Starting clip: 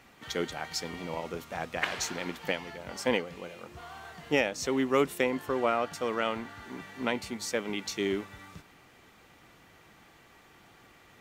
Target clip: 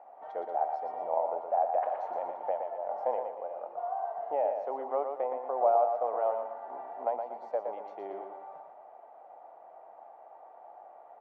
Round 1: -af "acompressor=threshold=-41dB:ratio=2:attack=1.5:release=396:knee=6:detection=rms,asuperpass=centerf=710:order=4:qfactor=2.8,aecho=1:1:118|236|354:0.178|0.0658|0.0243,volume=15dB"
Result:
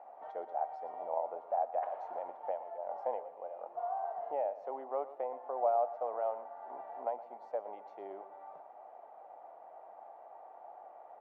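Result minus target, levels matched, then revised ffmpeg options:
echo-to-direct −9 dB; downward compressor: peak gain reduction +5 dB
-af "acompressor=threshold=-31dB:ratio=2:attack=1.5:release=396:knee=6:detection=rms,asuperpass=centerf=710:order=4:qfactor=2.8,aecho=1:1:118|236|354|472:0.501|0.185|0.0686|0.0254,volume=15dB"

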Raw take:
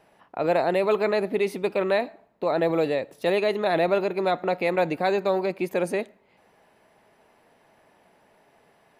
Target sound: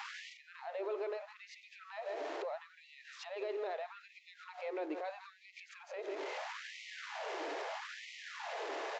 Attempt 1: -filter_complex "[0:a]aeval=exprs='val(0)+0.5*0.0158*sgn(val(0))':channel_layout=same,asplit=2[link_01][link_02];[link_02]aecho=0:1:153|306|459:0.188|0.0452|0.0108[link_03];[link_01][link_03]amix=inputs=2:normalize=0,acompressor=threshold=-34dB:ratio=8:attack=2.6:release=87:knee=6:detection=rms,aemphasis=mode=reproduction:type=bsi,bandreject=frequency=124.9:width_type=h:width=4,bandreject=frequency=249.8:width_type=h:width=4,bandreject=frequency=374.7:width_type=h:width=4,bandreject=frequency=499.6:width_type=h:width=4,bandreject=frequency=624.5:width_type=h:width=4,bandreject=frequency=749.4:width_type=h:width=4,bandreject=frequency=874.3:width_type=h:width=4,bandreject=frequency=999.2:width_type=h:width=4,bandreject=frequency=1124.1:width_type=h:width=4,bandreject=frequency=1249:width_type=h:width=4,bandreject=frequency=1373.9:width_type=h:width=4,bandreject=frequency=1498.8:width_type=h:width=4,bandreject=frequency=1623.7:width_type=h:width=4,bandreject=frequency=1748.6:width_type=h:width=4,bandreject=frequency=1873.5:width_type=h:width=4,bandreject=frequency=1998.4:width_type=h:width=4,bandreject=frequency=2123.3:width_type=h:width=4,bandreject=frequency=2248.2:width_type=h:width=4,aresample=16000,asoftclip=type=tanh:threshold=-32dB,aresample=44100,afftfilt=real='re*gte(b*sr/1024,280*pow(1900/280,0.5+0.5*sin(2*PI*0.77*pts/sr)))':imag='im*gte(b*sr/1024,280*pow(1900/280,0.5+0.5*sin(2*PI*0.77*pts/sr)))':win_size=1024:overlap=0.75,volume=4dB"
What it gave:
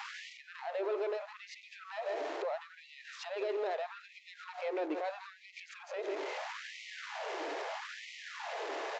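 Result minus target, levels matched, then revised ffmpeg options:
downward compressor: peak gain reduction −5.5 dB
-filter_complex "[0:a]aeval=exprs='val(0)+0.5*0.0158*sgn(val(0))':channel_layout=same,asplit=2[link_01][link_02];[link_02]aecho=0:1:153|306|459:0.188|0.0452|0.0108[link_03];[link_01][link_03]amix=inputs=2:normalize=0,acompressor=threshold=-40.5dB:ratio=8:attack=2.6:release=87:knee=6:detection=rms,aemphasis=mode=reproduction:type=bsi,bandreject=frequency=124.9:width_type=h:width=4,bandreject=frequency=249.8:width_type=h:width=4,bandreject=frequency=374.7:width_type=h:width=4,bandreject=frequency=499.6:width_type=h:width=4,bandreject=frequency=624.5:width_type=h:width=4,bandreject=frequency=749.4:width_type=h:width=4,bandreject=frequency=874.3:width_type=h:width=4,bandreject=frequency=999.2:width_type=h:width=4,bandreject=frequency=1124.1:width_type=h:width=4,bandreject=frequency=1249:width_type=h:width=4,bandreject=frequency=1373.9:width_type=h:width=4,bandreject=frequency=1498.8:width_type=h:width=4,bandreject=frequency=1623.7:width_type=h:width=4,bandreject=frequency=1748.6:width_type=h:width=4,bandreject=frequency=1873.5:width_type=h:width=4,bandreject=frequency=1998.4:width_type=h:width=4,bandreject=frequency=2123.3:width_type=h:width=4,bandreject=frequency=2248.2:width_type=h:width=4,aresample=16000,asoftclip=type=tanh:threshold=-32dB,aresample=44100,afftfilt=real='re*gte(b*sr/1024,280*pow(1900/280,0.5+0.5*sin(2*PI*0.77*pts/sr)))':imag='im*gte(b*sr/1024,280*pow(1900/280,0.5+0.5*sin(2*PI*0.77*pts/sr)))':win_size=1024:overlap=0.75,volume=4dB"

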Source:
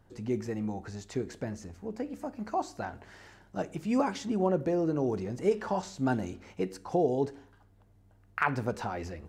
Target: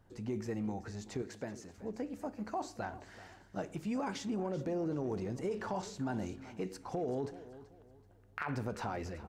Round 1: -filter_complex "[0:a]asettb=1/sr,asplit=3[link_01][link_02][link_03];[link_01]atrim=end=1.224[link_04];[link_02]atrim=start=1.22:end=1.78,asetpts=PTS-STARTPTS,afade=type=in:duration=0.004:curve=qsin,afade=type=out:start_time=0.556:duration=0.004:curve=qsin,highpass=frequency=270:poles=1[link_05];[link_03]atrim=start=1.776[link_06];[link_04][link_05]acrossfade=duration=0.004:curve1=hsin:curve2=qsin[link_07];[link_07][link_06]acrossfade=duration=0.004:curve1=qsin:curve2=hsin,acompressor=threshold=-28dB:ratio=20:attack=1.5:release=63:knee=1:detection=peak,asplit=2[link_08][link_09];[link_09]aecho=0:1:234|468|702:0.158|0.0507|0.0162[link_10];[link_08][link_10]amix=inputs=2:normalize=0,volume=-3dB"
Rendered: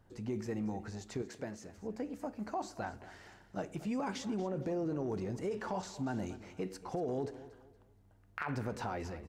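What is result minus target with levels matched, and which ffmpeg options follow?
echo 147 ms early
-filter_complex "[0:a]asettb=1/sr,asplit=3[link_01][link_02][link_03];[link_01]atrim=end=1.224[link_04];[link_02]atrim=start=1.22:end=1.78,asetpts=PTS-STARTPTS,afade=type=in:duration=0.004:curve=qsin,afade=type=out:start_time=0.556:duration=0.004:curve=qsin,highpass=frequency=270:poles=1[link_05];[link_03]atrim=start=1.776[link_06];[link_04][link_05]acrossfade=duration=0.004:curve1=hsin:curve2=qsin[link_07];[link_07][link_06]acrossfade=duration=0.004:curve1=qsin:curve2=hsin,acompressor=threshold=-28dB:ratio=20:attack=1.5:release=63:knee=1:detection=peak,asplit=2[link_08][link_09];[link_09]aecho=0:1:381|762|1143:0.158|0.0507|0.0162[link_10];[link_08][link_10]amix=inputs=2:normalize=0,volume=-3dB"

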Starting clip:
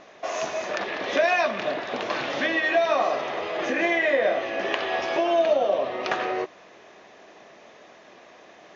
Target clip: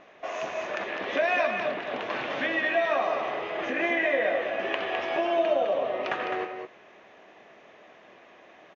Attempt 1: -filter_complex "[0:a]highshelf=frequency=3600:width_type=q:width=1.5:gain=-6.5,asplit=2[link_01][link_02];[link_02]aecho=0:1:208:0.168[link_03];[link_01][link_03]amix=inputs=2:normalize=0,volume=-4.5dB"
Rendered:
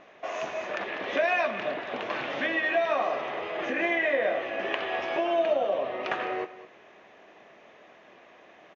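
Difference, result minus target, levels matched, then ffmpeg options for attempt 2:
echo-to-direct −9.5 dB
-filter_complex "[0:a]highshelf=frequency=3600:width_type=q:width=1.5:gain=-6.5,asplit=2[link_01][link_02];[link_02]aecho=0:1:208:0.501[link_03];[link_01][link_03]amix=inputs=2:normalize=0,volume=-4.5dB"

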